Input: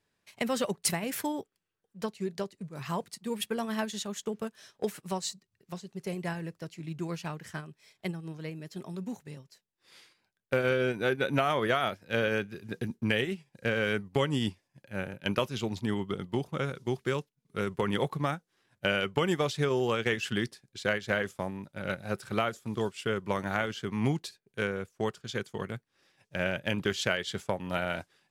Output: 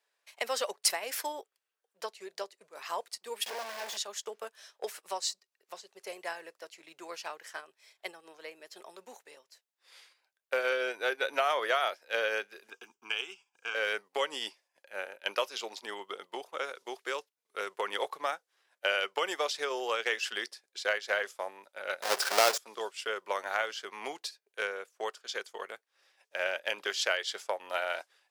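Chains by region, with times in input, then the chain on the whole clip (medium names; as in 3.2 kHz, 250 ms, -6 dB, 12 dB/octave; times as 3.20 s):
3.46–3.97 s: one-bit comparator + treble shelf 2.9 kHz -10 dB + band-stop 1.3 kHz, Q 8.3
12.70–13.75 s: peaking EQ 220 Hz -6 dB 0.79 oct + static phaser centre 2.8 kHz, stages 8
22.02–22.58 s: square wave that keeps the level + level flattener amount 50%
whole clip: high-pass 500 Hz 24 dB/octave; dynamic bell 5.1 kHz, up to +6 dB, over -56 dBFS, Q 2.8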